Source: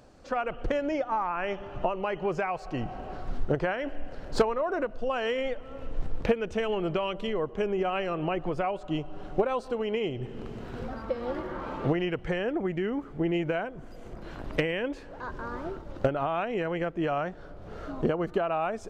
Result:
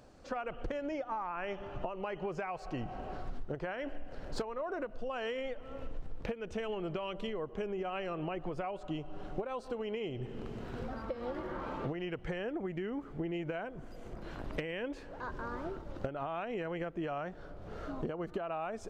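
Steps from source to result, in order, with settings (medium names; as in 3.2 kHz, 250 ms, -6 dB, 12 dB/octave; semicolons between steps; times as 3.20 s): compression 6:1, threshold -31 dBFS, peak gain reduction 13 dB; trim -3 dB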